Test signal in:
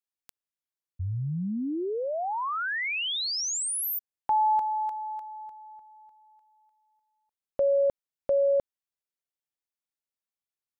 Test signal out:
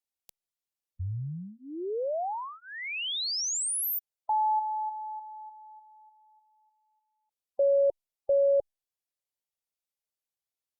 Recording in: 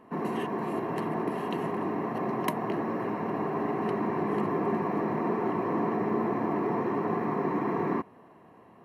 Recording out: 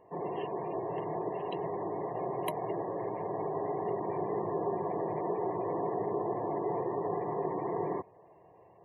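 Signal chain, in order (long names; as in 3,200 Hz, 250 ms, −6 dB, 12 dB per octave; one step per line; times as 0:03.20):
gate on every frequency bin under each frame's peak −25 dB strong
phaser with its sweep stopped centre 580 Hz, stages 4
Opus 128 kbit/s 48,000 Hz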